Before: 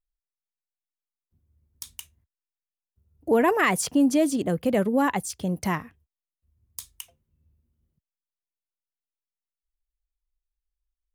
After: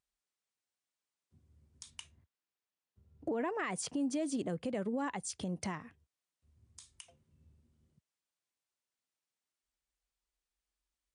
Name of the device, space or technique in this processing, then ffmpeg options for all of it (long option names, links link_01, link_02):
podcast mastering chain: -filter_complex "[0:a]asettb=1/sr,asplit=3[link_01][link_02][link_03];[link_01]atrim=end=1.904[link_04];[link_02]atrim=start=1.9:end=3.7,asetpts=PTS-STARTPTS,afade=type=in:duration=0.004:curve=qsin,afade=type=out:start_time=1.796:duration=0.004:curve=qsin,highshelf=frequency=6500:gain=-11.5[link_05];[link_03]atrim=start=3.696[link_06];[link_04][link_05]acrossfade=duration=0.004:curve1=hsin:curve2=qsin[link_07];[link_07][link_06]acrossfade=duration=0.004:curve1=qsin:curve2=hsin,highpass=94,acompressor=threshold=-43dB:ratio=2.5,alimiter=level_in=8.5dB:limit=-24dB:level=0:latency=1:release=165,volume=-8.5dB,volume=5.5dB" -ar 22050 -c:a libmp3lame -b:a 96k